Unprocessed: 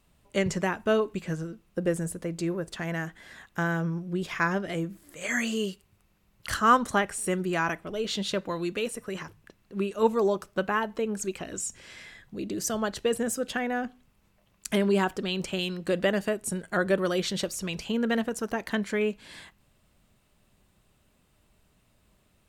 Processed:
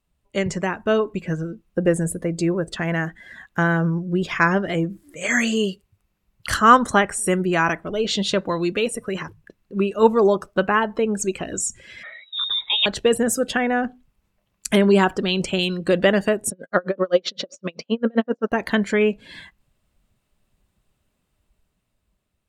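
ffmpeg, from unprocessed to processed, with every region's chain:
ffmpeg -i in.wav -filter_complex "[0:a]asettb=1/sr,asplit=3[link_01][link_02][link_03];[link_01]atrim=end=12.034[link_04];[link_02]atrim=start=12.03:end=12.86,asetpts=PTS-STARTPTS,afade=type=in:duration=0.004:curve=qsin,afade=type=out:start_time=0.826:duration=0.004:curve=qsin,highshelf=frequency=2500:gain=5.5,lowpass=frequency=3300:width_type=q:width=0.5098,lowpass=frequency=3300:width_type=q:width=0.6013,lowpass=frequency=3300:width_type=q:width=0.9,lowpass=frequency=3300:width_type=q:width=2.563,afreqshift=-3900[link_05];[link_03]atrim=start=12.856[link_06];[link_04][link_05]acrossfade=duration=0.004:curve1=hsin:curve2=qsin[link_07];[link_07][link_06]acrossfade=duration=0.004:curve1=qsin:curve2=hsin,asettb=1/sr,asplit=3[link_08][link_09][link_10];[link_08]atrim=end=16.504[link_11];[link_09]atrim=start=16.5:end=18.52,asetpts=PTS-STARTPTS,afade=type=in:duration=0.004:curve=qsin,afade=type=out:start_time=2.016:duration=0.004:curve=qsin,highpass=160,equalizer=frequency=260:width_type=q:width=4:gain=8,equalizer=frequency=540:width_type=q:width=4:gain=10,equalizer=frequency=1200:width_type=q:width=4:gain=5,lowpass=frequency=5900:width=0.5412,lowpass=frequency=5900:width=1.3066,aeval=exprs='val(0)*pow(10,-37*(0.5-0.5*cos(2*PI*7.7*n/s))/20)':channel_layout=same[link_12];[link_10]atrim=start=18.516[link_13];[link_11][link_12]acrossfade=duration=0.004:curve1=hsin:curve2=qsin[link_14];[link_14][link_13]acrossfade=duration=0.004:curve1=qsin:curve2=hsin,afftdn=noise_reduction=14:noise_floor=-47,dynaudnorm=framelen=280:gausssize=9:maxgain=5.5dB,volume=3dB" out.wav

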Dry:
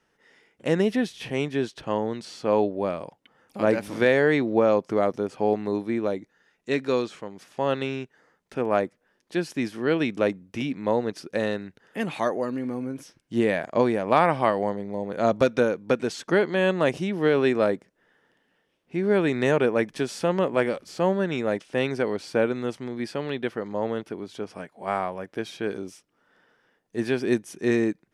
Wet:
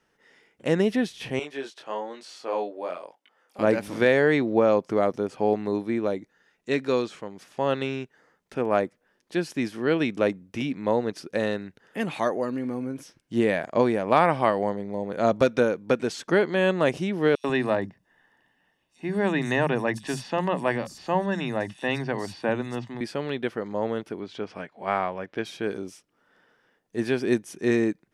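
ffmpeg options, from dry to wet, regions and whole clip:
ffmpeg -i in.wav -filter_complex "[0:a]asettb=1/sr,asplit=3[link_01][link_02][link_03];[link_01]atrim=end=1.394[link_04];[link_02]atrim=start=1.39:end=3.59,asetpts=PTS-STARTPTS,afade=type=in:duration=0.004:curve=qsin,afade=type=out:start_time=2.196:duration=0.004:curve=qsin,highpass=470,flanger=delay=19.5:depth=4.5:speed=1.1[link_05];[link_03]atrim=start=3.586[link_06];[link_04][link_05]acrossfade=duration=0.004:curve1=hsin:curve2=qsin[link_07];[link_07][link_06]acrossfade=duration=0.004:curve1=qsin:curve2=hsin,asettb=1/sr,asplit=3[link_08][link_09][link_10];[link_08]atrim=end=17.354[link_11];[link_09]atrim=start=17.35:end=23.01,asetpts=PTS-STARTPTS,afade=type=in:duration=0.004:curve=qsin,afade=type=out:start_time=5.656:duration=0.004:curve=qsin,aecho=1:1:1.1:0.53,atrim=end_sample=249606,acrossover=split=180|4800[link_12][link_13][link_14];[link_13]adelay=90[link_15];[link_12]adelay=140[link_16];[link_16][link_15][link_14]amix=inputs=3:normalize=0,atrim=end_sample=249606[link_17];[link_10]atrim=start=23.006[link_18];[link_11][link_17]acrossfade=duration=0.004:curve1=hsin:curve2=qsin[link_19];[link_19][link_18]acrossfade=duration=0.004:curve1=qsin:curve2=hsin,asettb=1/sr,asplit=3[link_20][link_21][link_22];[link_20]atrim=end=24.204[link_23];[link_21]atrim=start=24.2:end=25.45,asetpts=PTS-STARTPTS,afade=type=in:duration=0.004:curve=qsin,afade=type=out:start_time=1.246:duration=0.004:curve=qsin,lowpass=3300,highshelf=frequency=2200:gain=8.5[link_24];[link_22]atrim=start=25.446[link_25];[link_23][link_24]acrossfade=duration=0.004:curve1=hsin:curve2=qsin[link_26];[link_26][link_25]acrossfade=duration=0.004:curve1=qsin:curve2=hsin" out.wav

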